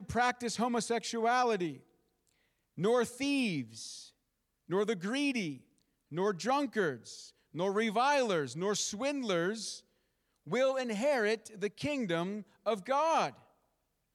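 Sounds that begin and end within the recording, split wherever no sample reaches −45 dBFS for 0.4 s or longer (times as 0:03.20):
0:02.78–0:04.06
0:04.70–0:05.58
0:06.12–0:09.79
0:10.47–0:13.30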